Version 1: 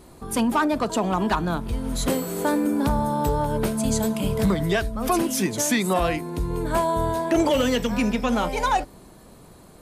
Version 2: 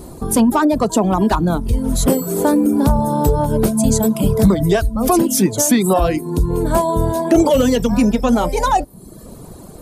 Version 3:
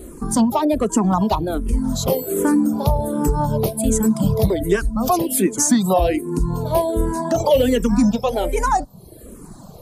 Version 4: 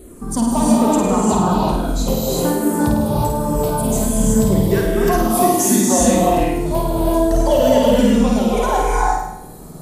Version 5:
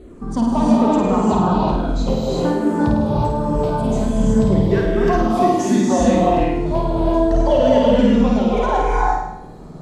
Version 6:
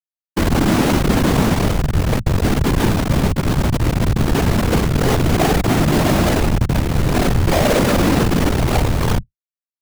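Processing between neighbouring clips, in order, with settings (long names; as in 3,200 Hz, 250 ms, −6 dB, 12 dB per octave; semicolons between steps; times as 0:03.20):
reverb reduction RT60 0.7 s; parametric band 2,200 Hz −11 dB 2.2 octaves; in parallel at +0.5 dB: downward compressor, threshold −34 dBFS, peak gain reduction 15.5 dB; on the sum: level +8.5 dB
frequency shifter mixed with the dry sound −1.3 Hz
flutter between parallel walls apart 8.9 metres, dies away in 0.81 s; reverb whose tail is shaped and stops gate 390 ms rising, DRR −3.5 dB; level −4 dB
high-frequency loss of the air 160 metres
tape wow and flutter 140 cents; comparator with hysteresis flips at −14 dBFS; random phases in short frames; level +2 dB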